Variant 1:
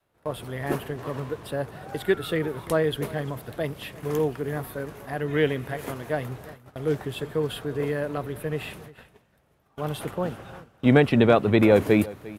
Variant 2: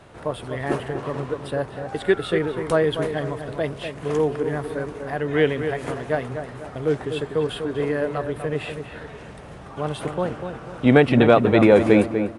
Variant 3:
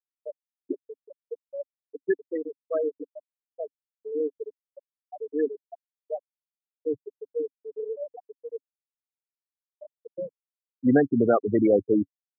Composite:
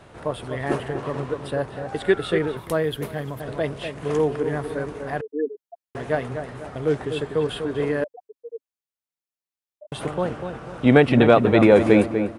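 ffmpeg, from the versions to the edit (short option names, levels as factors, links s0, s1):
-filter_complex "[2:a]asplit=2[s0][s1];[1:a]asplit=4[s2][s3][s4][s5];[s2]atrim=end=2.572[s6];[0:a]atrim=start=2.568:end=3.402[s7];[s3]atrim=start=3.398:end=5.212[s8];[s0]atrim=start=5.208:end=5.952[s9];[s4]atrim=start=5.948:end=8.042[s10];[s1]atrim=start=8.038:end=9.922[s11];[s5]atrim=start=9.918[s12];[s6][s7]acrossfade=d=0.004:c1=hsin:c2=hsin[s13];[s13][s8]acrossfade=d=0.004:c1=hsin:c2=hsin[s14];[s14][s9]acrossfade=d=0.004:c1=hsin:c2=hsin[s15];[s15][s10]acrossfade=d=0.004:c1=hsin:c2=hsin[s16];[s16][s11]acrossfade=d=0.004:c1=hsin:c2=hsin[s17];[s17][s12]acrossfade=d=0.004:c1=hsin:c2=hsin"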